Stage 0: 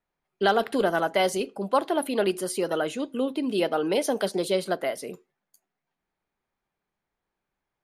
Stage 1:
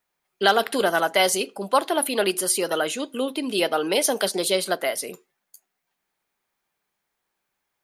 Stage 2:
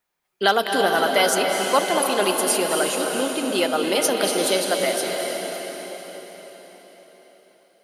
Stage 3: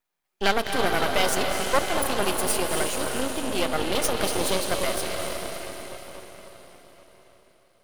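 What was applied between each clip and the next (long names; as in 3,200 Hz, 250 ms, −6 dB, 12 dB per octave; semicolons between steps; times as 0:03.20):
spectral tilt +2.5 dB per octave; level +4 dB
convolution reverb RT60 5.0 s, pre-delay 193 ms, DRR 1.5 dB
half-wave rectification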